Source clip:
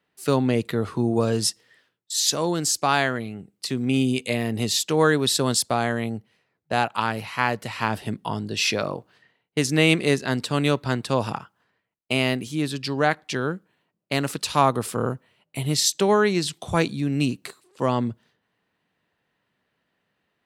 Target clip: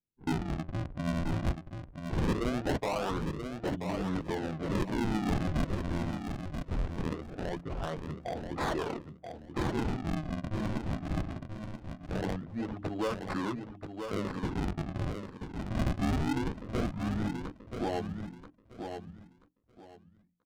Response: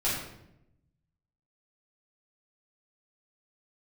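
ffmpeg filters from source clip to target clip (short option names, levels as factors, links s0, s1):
-filter_complex "[0:a]afftdn=nr=17:nf=-35,highshelf=f=5000:g=6,bandreject=f=60:t=h:w=6,bandreject=f=120:t=h:w=6,bandreject=f=180:t=h:w=6,bandreject=f=240:t=h:w=6,bandreject=f=300:t=h:w=6,bandreject=f=360:t=h:w=6,bandreject=f=420:t=h:w=6,acrossover=split=300|4800[s0][s1][s2];[s0]acompressor=threshold=0.0112:ratio=6[s3];[s1]alimiter=limit=0.188:level=0:latency=1:release=114[s4];[s3][s4][s2]amix=inputs=3:normalize=0,flanger=delay=8.7:depth=9.8:regen=-8:speed=0.16:shape=sinusoidal,acrusher=samples=42:mix=1:aa=0.000001:lfo=1:lforange=67.2:lforate=0.21,asoftclip=type=tanh:threshold=0.0596,asetrate=32097,aresample=44100,atempo=1.37395,adynamicsmooth=sensitivity=4.5:basefreq=660,asplit=2[s5][s6];[s6]aecho=0:1:982|1964|2946:0.447|0.0983|0.0216[s7];[s5][s7]amix=inputs=2:normalize=0"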